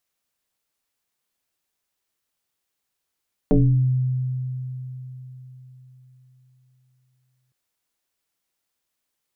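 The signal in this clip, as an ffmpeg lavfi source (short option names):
-f lavfi -i "aevalsrc='0.266*pow(10,-3*t/4.2)*sin(2*PI*128*t+2.8*pow(10,-3*t/0.6)*sin(2*PI*1.19*128*t))':d=4.01:s=44100"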